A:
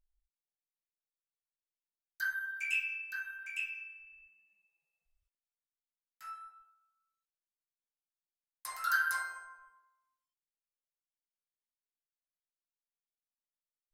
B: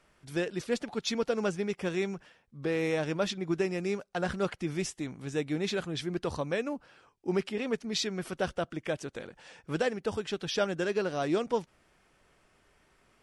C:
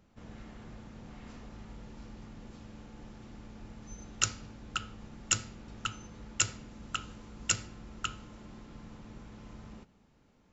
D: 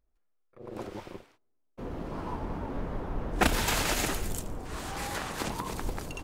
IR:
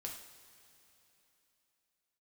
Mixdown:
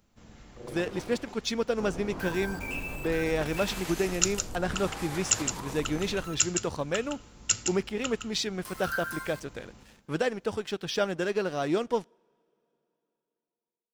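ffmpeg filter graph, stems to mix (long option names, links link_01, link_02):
-filter_complex "[0:a]flanger=delay=1.9:depth=1.1:regen=62:speed=0.93:shape=triangular,acrusher=bits=7:mix=0:aa=0.000001,volume=0.5dB,asplit=2[link_01][link_02];[link_02]volume=-18.5dB[link_03];[1:a]aeval=exprs='sgn(val(0))*max(abs(val(0))-0.00266,0)':channel_layout=same,adelay=400,volume=1.5dB,asplit=2[link_04][link_05];[link_05]volume=-24dB[link_06];[2:a]highshelf=frequency=4200:gain=11.5,volume=-4dB,asplit=2[link_07][link_08];[link_08]volume=-7dB[link_09];[3:a]acompressor=threshold=-36dB:ratio=10,volume=-2dB,asplit=3[link_10][link_11][link_12];[link_11]volume=-3.5dB[link_13];[link_12]volume=-5dB[link_14];[4:a]atrim=start_sample=2205[link_15];[link_03][link_06][link_13]amix=inputs=3:normalize=0[link_16];[link_16][link_15]afir=irnorm=-1:irlink=0[link_17];[link_09][link_14]amix=inputs=2:normalize=0,aecho=0:1:164:1[link_18];[link_01][link_04][link_07][link_10][link_17][link_18]amix=inputs=6:normalize=0"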